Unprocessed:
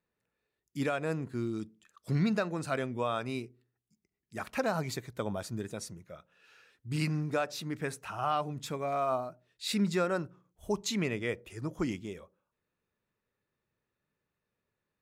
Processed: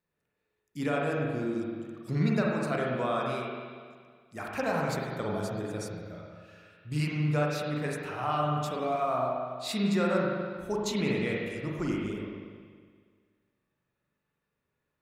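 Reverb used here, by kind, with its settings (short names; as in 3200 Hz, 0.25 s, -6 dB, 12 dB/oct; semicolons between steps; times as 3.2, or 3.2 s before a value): spring tank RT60 1.8 s, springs 40/47 ms, chirp 65 ms, DRR -3 dB; gain -1.5 dB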